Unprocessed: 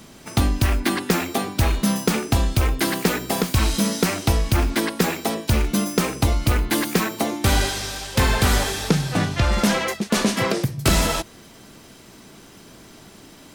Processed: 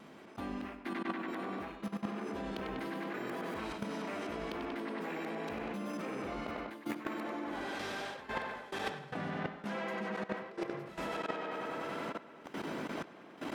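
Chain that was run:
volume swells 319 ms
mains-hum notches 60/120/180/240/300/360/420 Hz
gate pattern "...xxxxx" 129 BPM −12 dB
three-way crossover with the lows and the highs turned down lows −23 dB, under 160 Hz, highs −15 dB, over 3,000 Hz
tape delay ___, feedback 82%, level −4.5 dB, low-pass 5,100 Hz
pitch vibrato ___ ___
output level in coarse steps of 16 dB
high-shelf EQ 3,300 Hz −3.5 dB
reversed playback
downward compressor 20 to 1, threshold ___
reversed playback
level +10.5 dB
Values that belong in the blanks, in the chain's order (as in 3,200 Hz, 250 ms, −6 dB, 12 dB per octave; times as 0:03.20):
96 ms, 0.52 Hz, 7.8 cents, −45 dBFS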